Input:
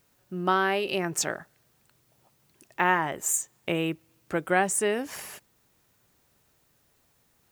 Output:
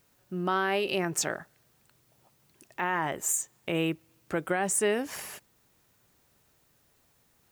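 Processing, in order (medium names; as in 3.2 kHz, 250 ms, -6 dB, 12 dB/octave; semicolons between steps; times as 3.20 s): peak limiter -16.5 dBFS, peak gain reduction 8.5 dB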